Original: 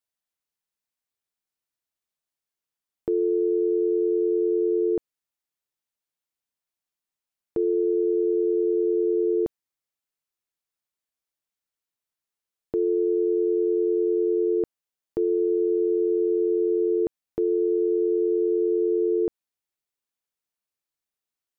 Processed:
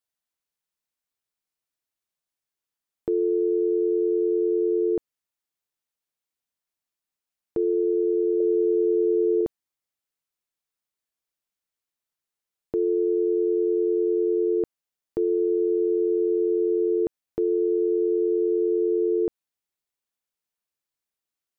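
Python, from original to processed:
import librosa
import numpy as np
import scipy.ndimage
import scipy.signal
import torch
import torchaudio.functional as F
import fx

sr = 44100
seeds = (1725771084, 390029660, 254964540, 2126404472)

y = fx.peak_eq(x, sr, hz=590.0, db=14.5, octaves=0.28, at=(8.4, 9.41))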